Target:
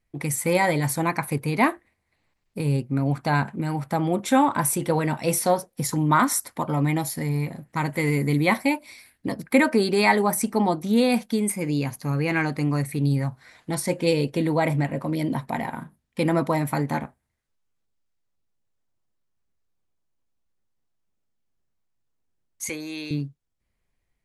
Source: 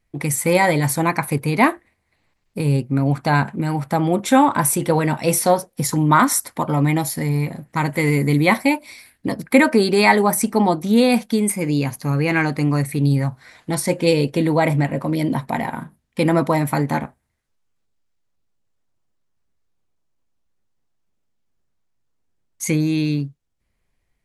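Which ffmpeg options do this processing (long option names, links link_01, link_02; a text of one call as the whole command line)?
ffmpeg -i in.wav -filter_complex "[0:a]asettb=1/sr,asplit=3[link_01][link_02][link_03];[link_01]atrim=end=22.694[link_04];[link_02]atrim=start=22.69:end=23.11,asetpts=PTS-STARTPTS,afade=type=in:duration=0.004:curve=qsin,afade=type=out:start_time=0.416:duration=0.004:curve=qsin,highpass=520[link_05];[link_03]atrim=start=23.106[link_06];[link_04][link_05]acrossfade=duration=0.004:curve1=hsin:curve2=qsin[link_07];[link_07][link_06]acrossfade=duration=0.004:curve1=qsin:curve2=hsin,volume=-5dB" out.wav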